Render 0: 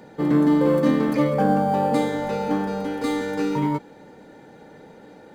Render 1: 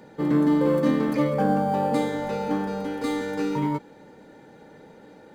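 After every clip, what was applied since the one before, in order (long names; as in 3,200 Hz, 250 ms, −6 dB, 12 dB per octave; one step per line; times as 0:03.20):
notch filter 720 Hz, Q 16
level −2.5 dB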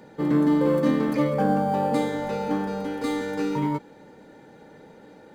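no processing that can be heard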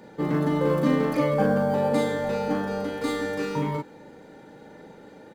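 double-tracking delay 39 ms −3 dB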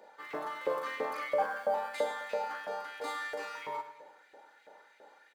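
auto-filter high-pass saw up 3 Hz 530–2,500 Hz
repeating echo 103 ms, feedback 43%, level −12.5 dB
level −9 dB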